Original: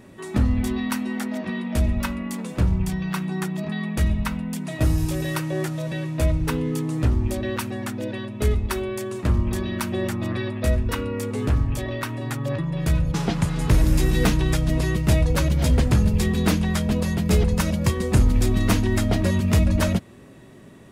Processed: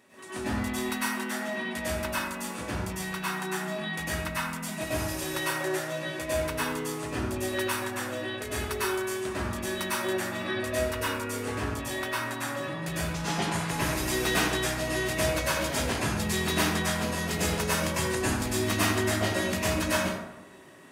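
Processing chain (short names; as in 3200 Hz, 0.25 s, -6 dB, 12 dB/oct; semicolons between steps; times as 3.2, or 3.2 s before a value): HPF 1000 Hz 6 dB/oct; plate-style reverb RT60 0.95 s, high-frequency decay 0.5×, pre-delay 90 ms, DRR -9.5 dB; gain -6 dB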